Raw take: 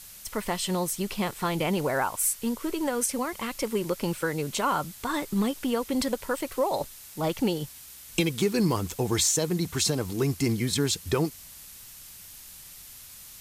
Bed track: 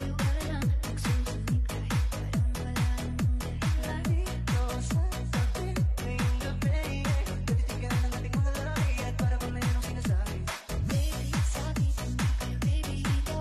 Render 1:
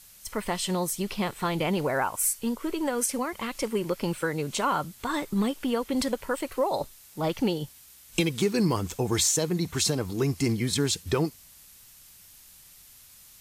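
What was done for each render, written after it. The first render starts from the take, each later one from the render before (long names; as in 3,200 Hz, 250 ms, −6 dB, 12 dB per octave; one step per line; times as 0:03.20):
noise reduction from a noise print 6 dB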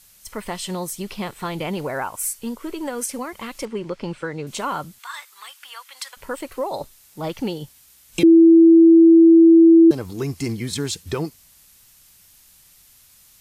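0:03.65–0:04.47: high-frequency loss of the air 100 metres
0:04.99–0:06.17: high-pass filter 1,100 Hz 24 dB per octave
0:08.23–0:09.91: beep over 330 Hz −6.5 dBFS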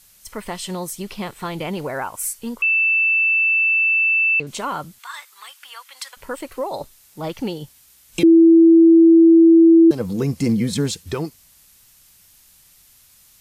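0:02.62–0:04.40: beep over 2,650 Hz −14 dBFS
0:09.99–0:10.92: hollow resonant body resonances 200/500 Hz, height 13 dB → 15 dB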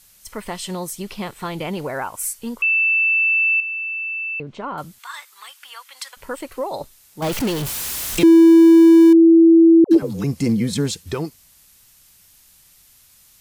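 0:03.60–0:04.78: head-to-tape spacing loss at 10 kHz 35 dB
0:07.22–0:09.13: converter with a step at zero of −21 dBFS
0:09.84–0:10.24: all-pass dispersion lows, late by 124 ms, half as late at 360 Hz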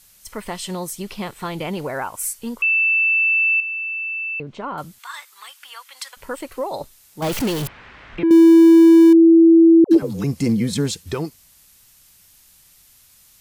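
0:07.67–0:08.31: transistor ladder low-pass 2,500 Hz, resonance 30%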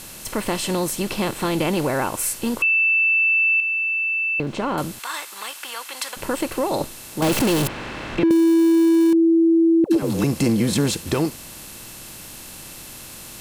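compressor on every frequency bin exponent 0.6
downward compressor, threshold −14 dBFS, peak gain reduction 7 dB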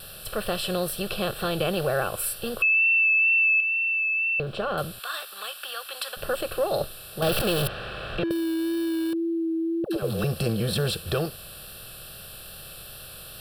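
phaser with its sweep stopped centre 1,400 Hz, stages 8
tape wow and flutter 22 cents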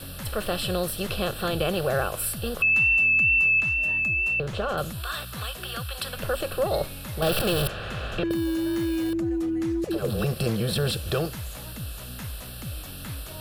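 mix in bed track −9 dB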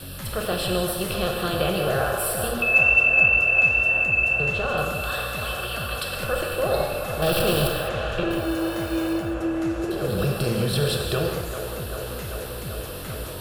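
delay with a band-pass on its return 391 ms, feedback 84%, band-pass 940 Hz, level −7.5 dB
reverb whose tail is shaped and stops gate 230 ms flat, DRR 1 dB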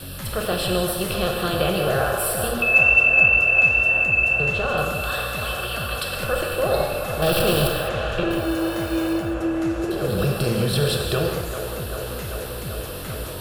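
level +2 dB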